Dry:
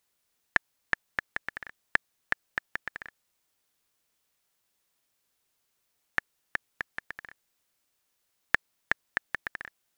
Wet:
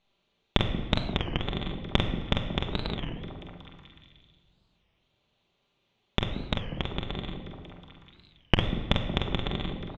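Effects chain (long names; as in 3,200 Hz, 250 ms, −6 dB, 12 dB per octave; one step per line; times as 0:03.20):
lower of the sound and its delayed copy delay 0.3 ms
low-pass filter 4,000 Hz 24 dB per octave
in parallel at +1 dB: downward compressor 10 to 1, threshold −36 dBFS, peak gain reduction 18 dB
on the sum: double-tracking delay 46 ms −5 dB
on a send: echo through a band-pass that steps 183 ms, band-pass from 230 Hz, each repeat 0.7 octaves, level −3.5 dB
on the sum: rectangular room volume 1,900 cubic metres, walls mixed, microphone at 1.2 metres
wow of a warped record 33 1/3 rpm, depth 250 cents
level +1 dB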